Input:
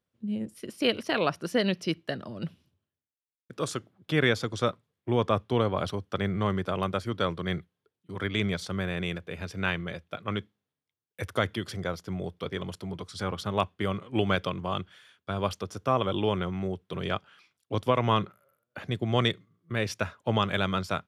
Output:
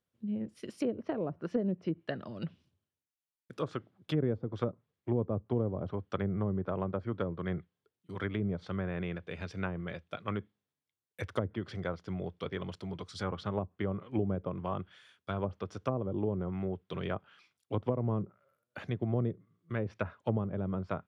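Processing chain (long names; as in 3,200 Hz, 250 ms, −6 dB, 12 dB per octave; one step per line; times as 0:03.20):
treble cut that deepens with the level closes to 440 Hz, closed at −23 dBFS
level −3.5 dB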